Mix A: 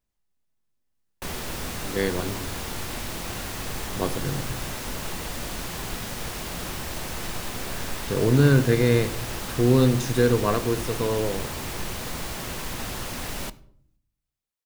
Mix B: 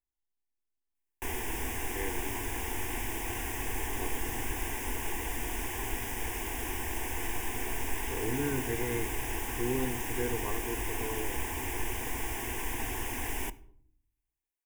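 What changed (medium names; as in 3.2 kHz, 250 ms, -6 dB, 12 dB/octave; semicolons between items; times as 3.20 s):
speech -11.0 dB; master: add static phaser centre 860 Hz, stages 8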